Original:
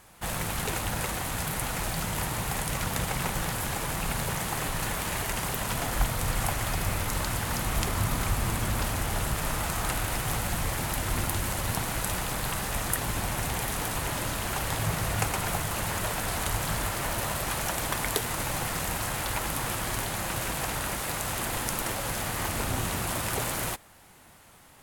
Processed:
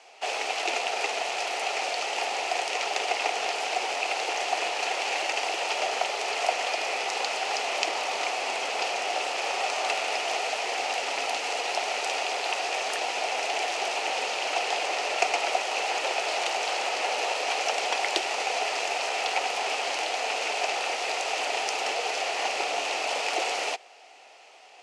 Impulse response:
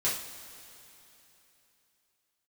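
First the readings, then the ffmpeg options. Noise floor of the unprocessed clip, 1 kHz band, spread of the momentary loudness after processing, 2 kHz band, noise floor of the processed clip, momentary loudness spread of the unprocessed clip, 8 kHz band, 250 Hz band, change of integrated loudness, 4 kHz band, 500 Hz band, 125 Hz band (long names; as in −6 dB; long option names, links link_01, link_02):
−53 dBFS, +5.0 dB, 2 LU, +4.5 dB, −49 dBFS, 2 LU, −3.5 dB, −11.5 dB, +2.0 dB, +6.0 dB, +5.5 dB, below −35 dB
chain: -af "highshelf=frequency=3400:gain=10,afreqshift=-79,highpass=frequency=400:width=0.5412,highpass=frequency=400:width=1.3066,equalizer=frequency=420:width_type=q:width=4:gain=3,equalizer=frequency=740:width_type=q:width=4:gain=9,equalizer=frequency=1100:width_type=q:width=4:gain=-6,equalizer=frequency=1600:width_type=q:width=4:gain=-8,equalizer=frequency=2600:width_type=q:width=4:gain=7,equalizer=frequency=3700:width_type=q:width=4:gain=-5,lowpass=frequency=5300:width=0.5412,lowpass=frequency=5300:width=1.3066,volume=2dB"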